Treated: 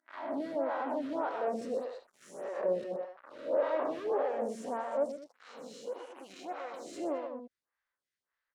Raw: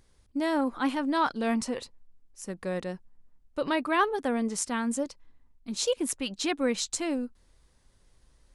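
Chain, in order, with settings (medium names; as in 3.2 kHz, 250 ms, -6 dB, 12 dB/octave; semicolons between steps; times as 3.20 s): reverse spectral sustain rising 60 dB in 0.74 s; treble shelf 4.9 kHz +7 dB; 5.03–6.74 s: compression 12:1, threshold -37 dBFS, peak gain reduction 18 dB; waveshaping leveller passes 5; peak limiter -14 dBFS, peak gain reduction 7.5 dB; saturation -20 dBFS, distortion -15 dB; auto-wah 550–1700 Hz, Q 2.3, down, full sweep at -20.5 dBFS; loudspeakers at several distances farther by 43 m -6 dB, 69 m -10 dB; lamp-driven phase shifter 1.7 Hz; trim -2 dB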